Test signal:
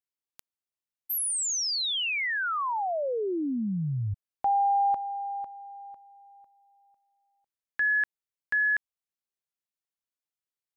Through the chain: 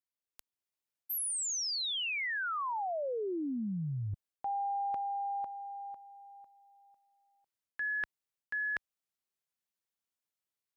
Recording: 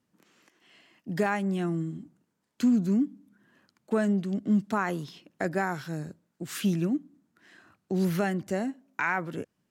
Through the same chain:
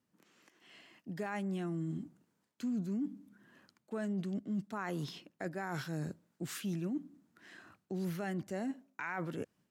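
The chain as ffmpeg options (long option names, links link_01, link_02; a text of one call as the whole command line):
ffmpeg -i in.wav -af "areverse,acompressor=threshold=-34dB:ratio=6:attack=6.2:release=223:knee=1:detection=rms,areverse,highpass=frequency=43:poles=1,dynaudnorm=framelen=370:gausssize=3:maxgain=5.5dB,volume=-5dB" out.wav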